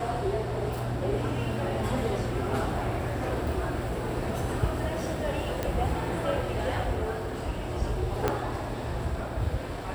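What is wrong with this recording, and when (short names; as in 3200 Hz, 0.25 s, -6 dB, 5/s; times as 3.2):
5.63 pop -15 dBFS
8.28 pop -11 dBFS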